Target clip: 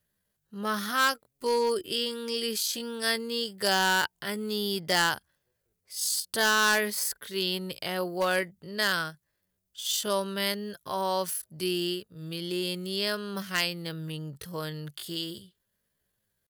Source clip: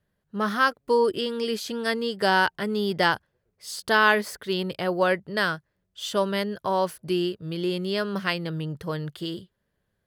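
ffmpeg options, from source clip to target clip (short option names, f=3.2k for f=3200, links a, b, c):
-af "asoftclip=type=hard:threshold=-14dB,atempo=0.61,crystalizer=i=4.5:c=0,volume=-6.5dB"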